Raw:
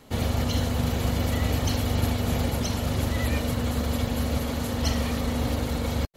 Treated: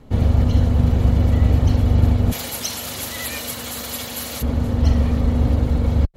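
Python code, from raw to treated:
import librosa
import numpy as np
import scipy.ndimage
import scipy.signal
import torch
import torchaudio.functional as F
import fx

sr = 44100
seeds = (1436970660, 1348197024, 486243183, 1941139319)

y = fx.tilt_eq(x, sr, slope=fx.steps((0.0, -3.0), (2.31, 3.5), (4.41, -3.0)))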